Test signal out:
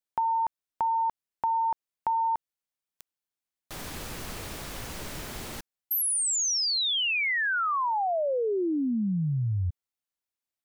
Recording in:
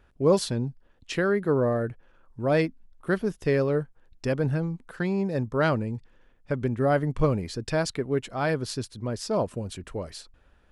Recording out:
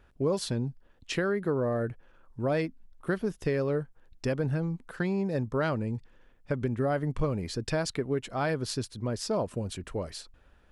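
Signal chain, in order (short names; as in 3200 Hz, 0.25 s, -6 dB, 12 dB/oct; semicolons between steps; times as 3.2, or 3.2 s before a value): compressor 4:1, threshold -25 dBFS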